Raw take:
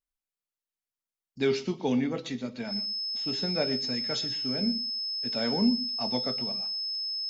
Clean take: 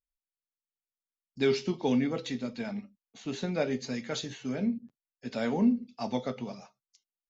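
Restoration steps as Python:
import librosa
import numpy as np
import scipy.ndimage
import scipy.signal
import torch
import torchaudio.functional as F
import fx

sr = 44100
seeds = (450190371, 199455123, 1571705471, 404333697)

y = fx.notch(x, sr, hz=5200.0, q=30.0)
y = fx.fix_echo_inverse(y, sr, delay_ms=121, level_db=-16.5)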